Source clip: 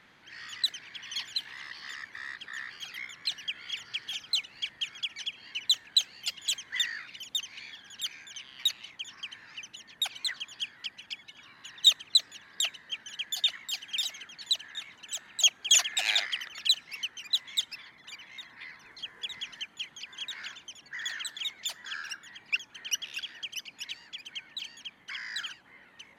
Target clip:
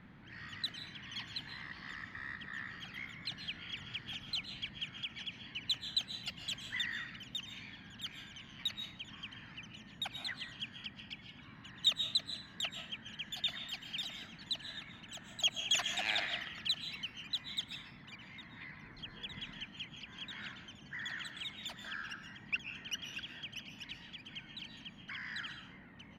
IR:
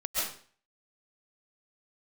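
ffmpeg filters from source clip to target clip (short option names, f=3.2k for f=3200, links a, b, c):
-filter_complex "[0:a]firequalizer=gain_entry='entry(200,0);entry(400,-13);entry(6200,-29)':delay=0.05:min_phase=1,asplit=2[a][b];[1:a]atrim=start_sample=2205[c];[b][c]afir=irnorm=-1:irlink=0,volume=-13.5dB[d];[a][d]amix=inputs=2:normalize=0,volume=11dB"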